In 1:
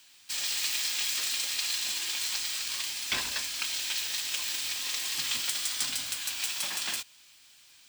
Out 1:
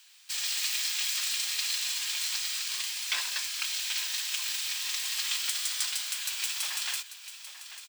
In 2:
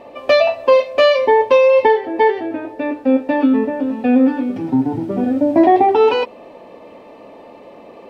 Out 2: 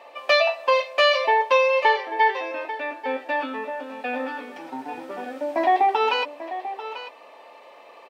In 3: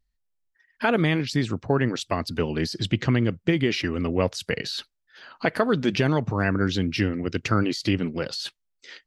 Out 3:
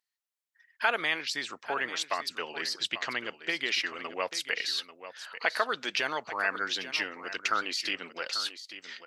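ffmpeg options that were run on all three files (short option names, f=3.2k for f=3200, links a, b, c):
-af "highpass=940,aecho=1:1:841:0.237"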